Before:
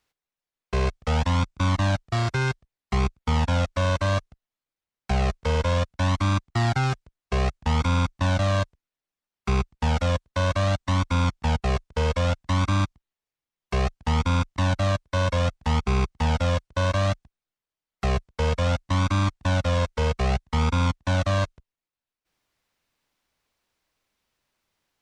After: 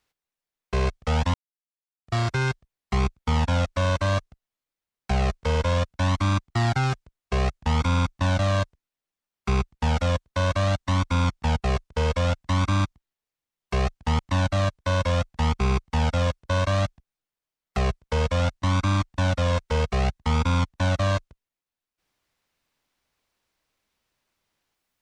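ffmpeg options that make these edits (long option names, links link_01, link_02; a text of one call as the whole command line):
ffmpeg -i in.wav -filter_complex "[0:a]asplit=4[link_01][link_02][link_03][link_04];[link_01]atrim=end=1.34,asetpts=PTS-STARTPTS,afade=type=out:start_time=1.336:duration=0.004:curve=hsin[link_05];[link_02]atrim=start=1.34:end=2.07,asetpts=PTS-STARTPTS,volume=0[link_06];[link_03]atrim=start=2.07:end=14.192,asetpts=PTS-STARTPTS,afade=type=in:duration=0.004:curve=hsin[link_07];[link_04]atrim=start=14.458[link_08];[link_05][link_06][link_07]concat=n=3:v=0:a=1[link_09];[link_09][link_08]acrossfade=duration=0.004:curve1=hsin:curve2=hsin" out.wav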